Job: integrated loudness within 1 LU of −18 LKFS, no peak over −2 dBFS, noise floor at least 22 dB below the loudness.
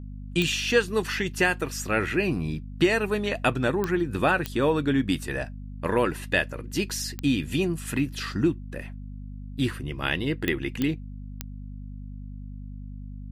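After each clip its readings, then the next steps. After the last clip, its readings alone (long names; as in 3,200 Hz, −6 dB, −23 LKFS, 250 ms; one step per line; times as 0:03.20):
number of clicks 7; mains hum 50 Hz; hum harmonics up to 250 Hz; level of the hum −35 dBFS; integrated loudness −26.5 LKFS; sample peak −8.0 dBFS; target loudness −18.0 LKFS
→ click removal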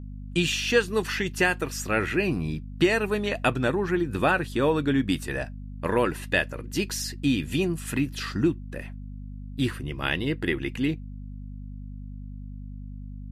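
number of clicks 0; mains hum 50 Hz; hum harmonics up to 250 Hz; level of the hum −35 dBFS
→ hum removal 50 Hz, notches 5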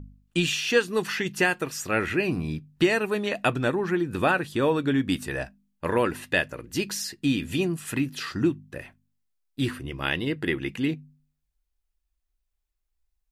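mains hum none found; integrated loudness −26.5 LKFS; sample peak −8.0 dBFS; target loudness −18.0 LKFS
→ level +8.5 dB
brickwall limiter −2 dBFS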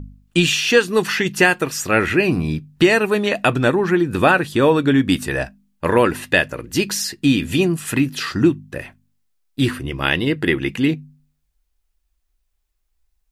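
integrated loudness −18.0 LKFS; sample peak −2.0 dBFS; background noise floor −70 dBFS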